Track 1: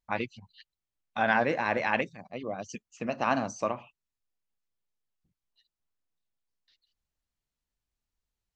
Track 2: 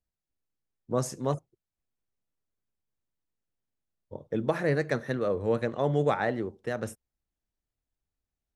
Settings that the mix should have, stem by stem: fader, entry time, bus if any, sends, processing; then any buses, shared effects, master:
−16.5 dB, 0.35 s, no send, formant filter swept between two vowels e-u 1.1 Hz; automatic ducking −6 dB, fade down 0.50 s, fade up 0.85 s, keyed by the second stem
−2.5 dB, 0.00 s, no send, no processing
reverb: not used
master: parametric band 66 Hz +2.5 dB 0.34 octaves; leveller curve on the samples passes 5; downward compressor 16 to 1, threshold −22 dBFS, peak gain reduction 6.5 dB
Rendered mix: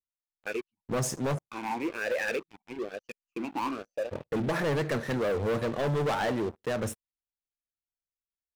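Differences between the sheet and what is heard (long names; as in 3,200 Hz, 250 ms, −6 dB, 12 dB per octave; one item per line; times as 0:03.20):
stem 1 −16.5 dB → −6.5 dB
stem 2 −2.5 dB → −12.0 dB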